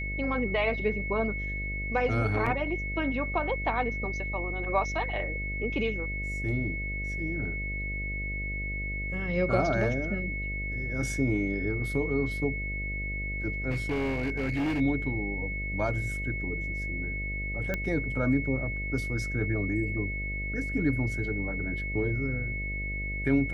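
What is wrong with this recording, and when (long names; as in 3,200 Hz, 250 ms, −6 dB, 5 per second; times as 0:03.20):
mains buzz 50 Hz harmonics 13 −35 dBFS
whistle 2,200 Hz −34 dBFS
0:02.46: drop-out 4.8 ms
0:13.71–0:14.81: clipping −25.5 dBFS
0:17.74: click −16 dBFS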